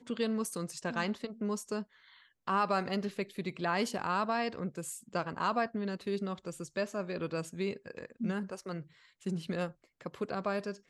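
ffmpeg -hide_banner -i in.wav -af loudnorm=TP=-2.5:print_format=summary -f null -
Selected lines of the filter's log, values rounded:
Input Integrated:    -35.9 LUFS
Input True Peak:     -18.6 dBTP
Input LRA:             4.4 LU
Input Threshold:     -46.3 LUFS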